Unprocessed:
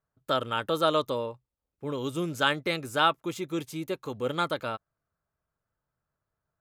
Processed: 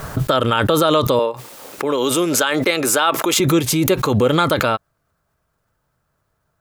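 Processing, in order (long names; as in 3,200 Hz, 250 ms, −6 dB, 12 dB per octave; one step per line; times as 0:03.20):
0:01.19–0:03.40: high-pass filter 340 Hz 12 dB per octave
boost into a limiter +20 dB
background raised ahead of every attack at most 27 dB per second
level −5 dB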